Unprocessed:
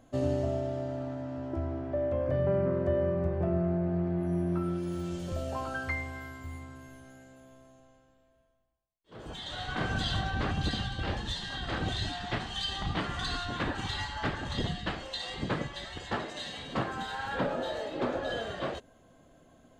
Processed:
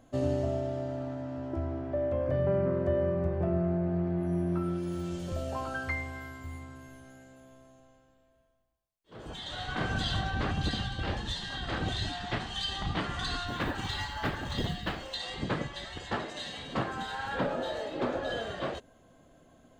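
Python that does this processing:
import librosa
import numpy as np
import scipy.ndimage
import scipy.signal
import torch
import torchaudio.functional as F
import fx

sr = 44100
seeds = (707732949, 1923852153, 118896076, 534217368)

y = fx.quant_float(x, sr, bits=4, at=(13.47, 15.15))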